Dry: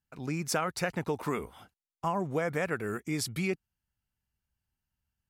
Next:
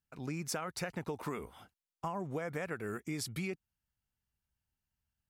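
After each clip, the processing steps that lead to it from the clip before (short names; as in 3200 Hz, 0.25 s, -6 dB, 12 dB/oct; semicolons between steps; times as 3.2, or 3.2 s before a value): compressor, threshold -31 dBFS, peak gain reduction 6.5 dB; gain -3 dB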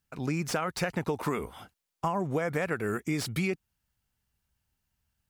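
slew limiter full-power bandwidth 54 Hz; gain +8.5 dB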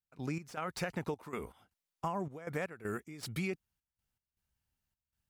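step gate ".x.xxx.x.xxx.x" 79 bpm -12 dB; gain -6.5 dB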